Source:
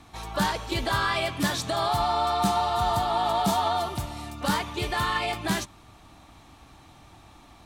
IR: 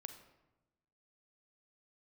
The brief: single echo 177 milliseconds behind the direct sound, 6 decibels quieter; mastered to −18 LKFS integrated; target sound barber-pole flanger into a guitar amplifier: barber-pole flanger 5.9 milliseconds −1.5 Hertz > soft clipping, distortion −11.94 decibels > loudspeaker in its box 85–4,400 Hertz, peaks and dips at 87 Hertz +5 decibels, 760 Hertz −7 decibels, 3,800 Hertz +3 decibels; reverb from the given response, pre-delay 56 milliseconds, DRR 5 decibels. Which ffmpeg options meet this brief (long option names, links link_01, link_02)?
-filter_complex "[0:a]aecho=1:1:177:0.501,asplit=2[link_01][link_02];[1:a]atrim=start_sample=2205,adelay=56[link_03];[link_02][link_03]afir=irnorm=-1:irlink=0,volume=-0.5dB[link_04];[link_01][link_04]amix=inputs=2:normalize=0,asplit=2[link_05][link_06];[link_06]adelay=5.9,afreqshift=-1.5[link_07];[link_05][link_07]amix=inputs=2:normalize=1,asoftclip=threshold=-24.5dB,highpass=85,equalizer=frequency=87:width_type=q:width=4:gain=5,equalizer=frequency=760:width_type=q:width=4:gain=-7,equalizer=frequency=3800:width_type=q:width=4:gain=3,lowpass=frequency=4400:width=0.5412,lowpass=frequency=4400:width=1.3066,volume=13.5dB"